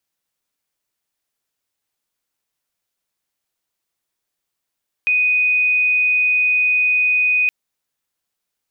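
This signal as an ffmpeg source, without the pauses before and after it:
ffmpeg -f lavfi -i "sine=frequency=2490:duration=2.42:sample_rate=44100,volume=5.06dB" out.wav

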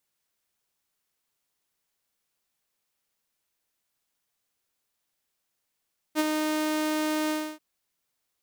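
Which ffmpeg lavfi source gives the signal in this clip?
ffmpeg -f lavfi -i "aevalsrc='0.133*(2*mod(308*t,1)-1)':duration=1.437:sample_rate=44100,afade=type=in:duration=0.046,afade=type=out:start_time=0.046:duration=0.029:silence=0.562,afade=type=out:start_time=1.15:duration=0.287" out.wav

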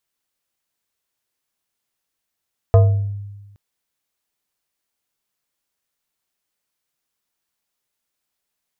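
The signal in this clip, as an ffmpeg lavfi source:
ffmpeg -f lavfi -i "aevalsrc='0.531*pow(10,-3*t/1.24)*sin(2*PI*101*t+0.77*pow(10,-3*t/0.67)*sin(2*PI*5.62*101*t))':duration=0.82:sample_rate=44100" out.wav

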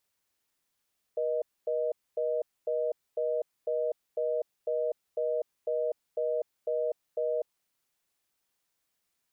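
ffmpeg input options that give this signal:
ffmpeg -f lavfi -i "aevalsrc='0.0335*(sin(2*PI*480*t)+sin(2*PI*620*t))*clip(min(mod(t,0.5),0.25-mod(t,0.5))/0.005,0,1)':duration=6.35:sample_rate=44100" out.wav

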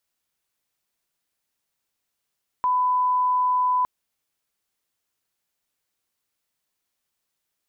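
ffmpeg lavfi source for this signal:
ffmpeg -f lavfi -i "sine=frequency=1000:duration=1.21:sample_rate=44100,volume=0.06dB" out.wav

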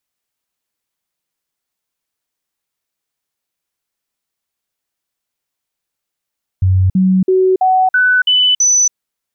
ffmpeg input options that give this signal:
ffmpeg -f lavfi -i "aevalsrc='0.398*clip(min(mod(t,0.33),0.28-mod(t,0.33))/0.005,0,1)*sin(2*PI*93.6*pow(2,floor(t/0.33)/1)*mod(t,0.33))':duration=2.31:sample_rate=44100" out.wav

